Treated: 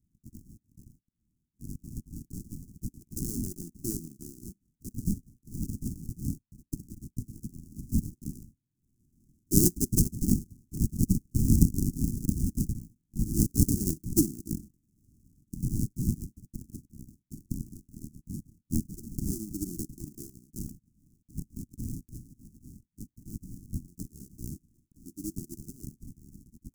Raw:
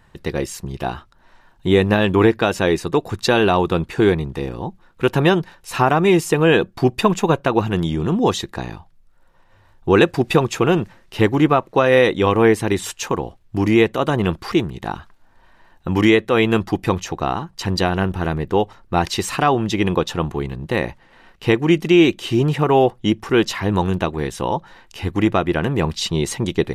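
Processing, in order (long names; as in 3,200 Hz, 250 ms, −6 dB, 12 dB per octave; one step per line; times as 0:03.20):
source passing by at 0:12.01, 13 m/s, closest 16 metres
amplitude modulation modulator 120 Hz, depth 35%
auto-filter high-pass sine 0.19 Hz 310–3,200 Hz
sample-rate reduction 1,000 Hz, jitter 20%
inverse Chebyshev band-stop filter 480–3,700 Hz, stop band 40 dB
level +5.5 dB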